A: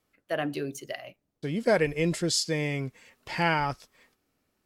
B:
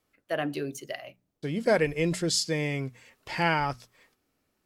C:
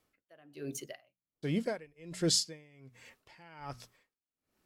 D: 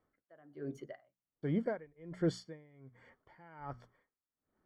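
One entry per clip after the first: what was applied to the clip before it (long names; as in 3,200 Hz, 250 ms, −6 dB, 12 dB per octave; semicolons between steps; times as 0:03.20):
mains-hum notches 60/120/180/240 Hz
tremolo with a sine in dB 1.3 Hz, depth 31 dB
Savitzky-Golay smoothing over 41 samples; level −1 dB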